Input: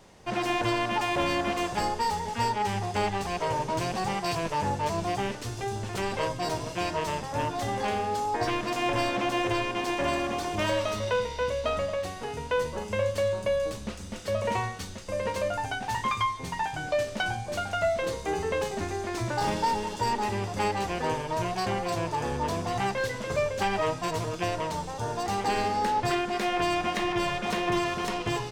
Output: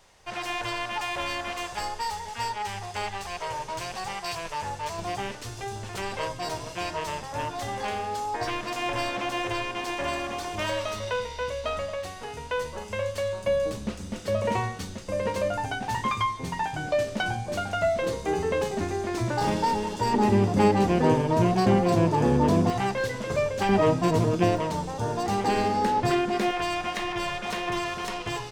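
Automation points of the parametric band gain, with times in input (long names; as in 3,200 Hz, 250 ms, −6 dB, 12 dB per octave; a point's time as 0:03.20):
parametric band 220 Hz 2.5 octaves
−13.5 dB
from 0:04.99 −5.5 dB
from 0:13.47 +5 dB
from 0:20.14 +14.5 dB
from 0:22.70 +3.5 dB
from 0:23.69 +14 dB
from 0:24.57 +6.5 dB
from 0:26.51 −5.5 dB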